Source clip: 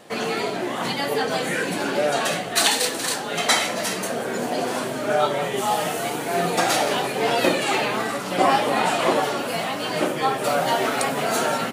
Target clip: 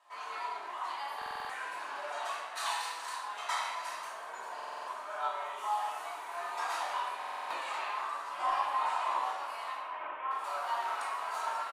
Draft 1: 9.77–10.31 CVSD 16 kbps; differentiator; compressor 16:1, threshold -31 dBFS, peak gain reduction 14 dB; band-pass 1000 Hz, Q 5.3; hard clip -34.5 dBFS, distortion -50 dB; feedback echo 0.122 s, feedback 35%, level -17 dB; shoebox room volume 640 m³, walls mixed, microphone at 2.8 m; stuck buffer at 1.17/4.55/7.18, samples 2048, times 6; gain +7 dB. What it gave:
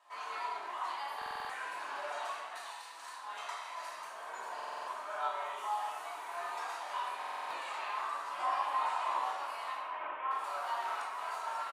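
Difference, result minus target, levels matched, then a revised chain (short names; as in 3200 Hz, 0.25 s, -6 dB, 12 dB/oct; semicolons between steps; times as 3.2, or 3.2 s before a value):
compressor: peak gain reduction +14 dB
9.77–10.31 CVSD 16 kbps; band-pass 1000 Hz, Q 5.3; differentiator; hard clip -34.5 dBFS, distortion -33 dB; feedback echo 0.122 s, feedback 35%, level -17 dB; shoebox room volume 640 m³, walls mixed, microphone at 2.8 m; stuck buffer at 1.17/4.55/7.18, samples 2048, times 6; gain +7 dB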